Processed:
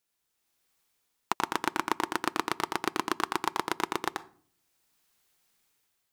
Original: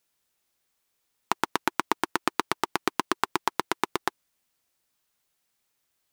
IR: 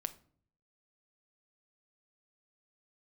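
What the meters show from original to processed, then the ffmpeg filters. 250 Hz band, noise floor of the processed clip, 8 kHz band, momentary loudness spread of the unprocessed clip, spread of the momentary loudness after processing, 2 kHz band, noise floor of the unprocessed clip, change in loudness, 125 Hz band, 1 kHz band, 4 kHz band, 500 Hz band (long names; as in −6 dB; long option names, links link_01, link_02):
−1.5 dB, −80 dBFS, −2.5 dB, 3 LU, 4 LU, −2.5 dB, −77 dBFS, −2.0 dB, −2.5 dB, −2.0 dB, −2.5 dB, −2.5 dB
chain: -filter_complex "[0:a]dynaudnorm=framelen=160:gausssize=7:maxgain=9dB,bandreject=frequency=590:width=12,asplit=2[link_01][link_02];[1:a]atrim=start_sample=2205,adelay=85[link_03];[link_02][link_03]afir=irnorm=-1:irlink=0,volume=-3dB[link_04];[link_01][link_04]amix=inputs=2:normalize=0,volume=-5.5dB"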